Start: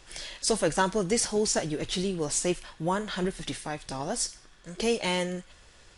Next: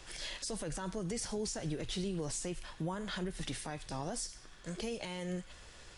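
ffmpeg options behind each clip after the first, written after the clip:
ffmpeg -i in.wav -filter_complex "[0:a]acrossover=split=150[link_01][link_02];[link_02]acompressor=threshold=-40dB:ratio=2[link_03];[link_01][link_03]amix=inputs=2:normalize=0,alimiter=level_in=6dB:limit=-24dB:level=0:latency=1:release=79,volume=-6dB,volume=1dB" out.wav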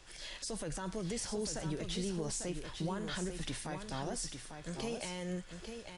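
ffmpeg -i in.wav -af "dynaudnorm=framelen=140:gausssize=5:maxgain=5dB,aecho=1:1:847:0.447,volume=-5.5dB" out.wav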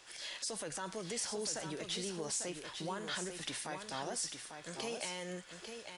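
ffmpeg -i in.wav -af "highpass=frequency=570:poles=1,volume=2.5dB" out.wav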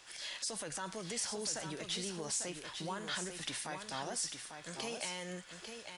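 ffmpeg -i in.wav -af "equalizer=frequency=420:width_type=o:width=1.2:gain=-3.5,volume=1dB" out.wav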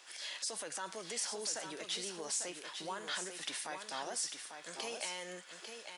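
ffmpeg -i in.wav -af "highpass=330" out.wav

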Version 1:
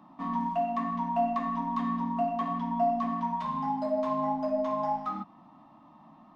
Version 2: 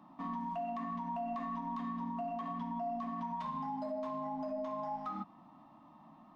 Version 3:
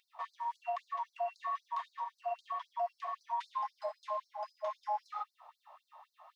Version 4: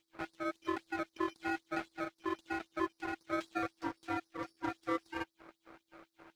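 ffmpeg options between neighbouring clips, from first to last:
ffmpeg -i in.wav -af "alimiter=level_in=4dB:limit=-24dB:level=0:latency=1:release=91,volume=-4dB,volume=-3.5dB" out.wav
ffmpeg -i in.wav -af "afftfilt=real='re*gte(b*sr/1024,460*pow(4100/460,0.5+0.5*sin(2*PI*3.8*pts/sr)))':imag='im*gte(b*sr/1024,460*pow(4100/460,0.5+0.5*sin(2*PI*3.8*pts/sr)))':win_size=1024:overlap=0.75,volume=6dB" out.wav
ffmpeg -i in.wav -af "aeval=exprs='max(val(0),0)':channel_layout=same,aeval=exprs='val(0)*sin(2*PI*330*n/s)':channel_layout=same,volume=6dB" out.wav

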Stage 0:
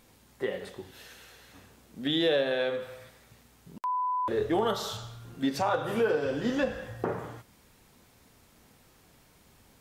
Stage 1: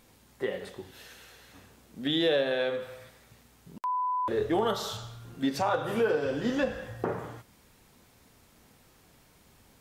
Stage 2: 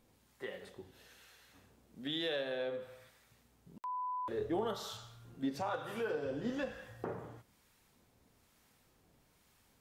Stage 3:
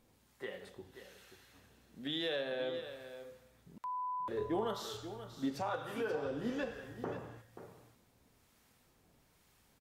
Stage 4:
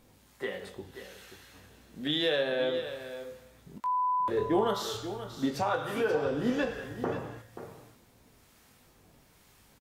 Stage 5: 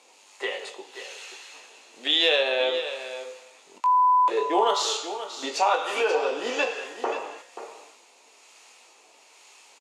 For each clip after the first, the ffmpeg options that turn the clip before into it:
ffmpeg -i in.wav -af anull out.wav
ffmpeg -i in.wav -filter_complex "[0:a]acrossover=split=860[link_01][link_02];[link_01]aeval=exprs='val(0)*(1-0.5/2+0.5/2*cos(2*PI*1.1*n/s))':channel_layout=same[link_03];[link_02]aeval=exprs='val(0)*(1-0.5/2-0.5/2*cos(2*PI*1.1*n/s))':channel_layout=same[link_04];[link_03][link_04]amix=inputs=2:normalize=0,volume=-7.5dB" out.wav
ffmpeg -i in.wav -af "aecho=1:1:533:0.266" out.wav
ffmpeg -i in.wav -filter_complex "[0:a]asplit=2[link_01][link_02];[link_02]adelay=20,volume=-9.5dB[link_03];[link_01][link_03]amix=inputs=2:normalize=0,volume=8dB" out.wav
ffmpeg -i in.wav -af "highpass=frequency=430:width=0.5412,highpass=frequency=430:width=1.3066,equalizer=frequency=530:width_type=q:width=4:gain=-3,equalizer=frequency=900:width_type=q:width=4:gain=4,equalizer=frequency=1600:width_type=q:width=4:gain=-6,equalizer=frequency=2600:width_type=q:width=4:gain=9,equalizer=frequency=4400:width_type=q:width=4:gain=4,equalizer=frequency=6800:width_type=q:width=4:gain=8,lowpass=frequency=9400:width=0.5412,lowpass=frequency=9400:width=1.3066,volume=7.5dB" out.wav

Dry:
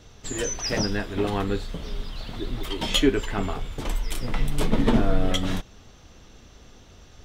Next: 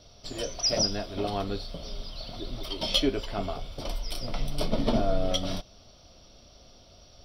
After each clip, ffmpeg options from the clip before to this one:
ffmpeg -i in.wav -af "superequalizer=8b=2.82:11b=0.501:13b=1.78:14b=3.55:15b=0.316,volume=-6.5dB" out.wav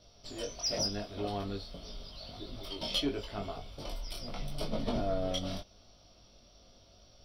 ffmpeg -i in.wav -af "flanger=delay=19:depth=2.4:speed=0.85,asoftclip=type=tanh:threshold=-18dB,volume=-3dB" out.wav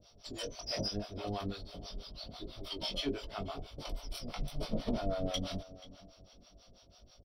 ffmpeg -i in.wav -filter_complex "[0:a]asplit=2[link_01][link_02];[link_02]adelay=482,lowpass=frequency=3300:poles=1,volume=-17dB,asplit=2[link_03][link_04];[link_04]adelay=482,lowpass=frequency=3300:poles=1,volume=0.28,asplit=2[link_05][link_06];[link_06]adelay=482,lowpass=frequency=3300:poles=1,volume=0.28[link_07];[link_01][link_03][link_05][link_07]amix=inputs=4:normalize=0,acrossover=split=590[link_08][link_09];[link_08]aeval=exprs='val(0)*(1-1/2+1/2*cos(2*PI*6.1*n/s))':channel_layout=same[link_10];[link_09]aeval=exprs='val(0)*(1-1/2-1/2*cos(2*PI*6.1*n/s))':channel_layout=same[link_11];[link_10][link_11]amix=inputs=2:normalize=0,volume=3dB" out.wav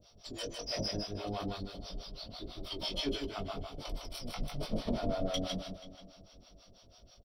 ffmpeg -i in.wav -af "aecho=1:1:155|310|465:0.562|0.09|0.0144" out.wav

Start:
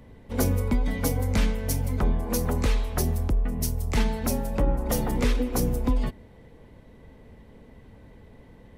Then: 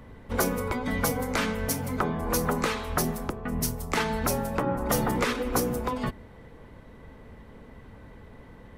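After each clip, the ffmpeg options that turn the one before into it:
ffmpeg -i in.wav -af "afftfilt=real='re*lt(hypot(re,im),0.398)':imag='im*lt(hypot(re,im),0.398)':win_size=1024:overlap=0.75,equalizer=frequency=1300:width_type=o:width=0.92:gain=8,volume=1.5dB" out.wav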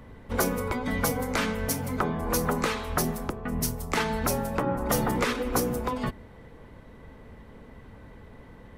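ffmpeg -i in.wav -af anull out.wav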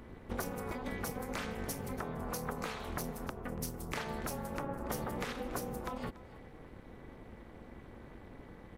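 ffmpeg -i in.wav -af "acompressor=threshold=-34dB:ratio=3,tremolo=f=290:d=0.974,aecho=1:1:286:0.133" out.wav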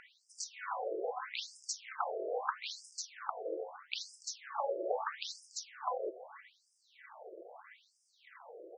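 ffmpeg -i in.wav -af "flanger=delay=7.7:depth=2.8:regen=88:speed=0.33:shape=sinusoidal,afftfilt=real='re*between(b*sr/1024,470*pow(7000/470,0.5+0.5*sin(2*PI*0.78*pts/sr))/1.41,470*pow(7000/470,0.5+0.5*sin(2*PI*0.78*pts/sr))*1.41)':imag='im*between(b*sr/1024,470*pow(7000/470,0.5+0.5*sin(2*PI*0.78*pts/sr))/1.41,470*pow(7000/470,0.5+0.5*sin(2*PI*0.78*pts/sr))*1.41)':win_size=1024:overlap=0.75,volume=13.5dB" out.wav

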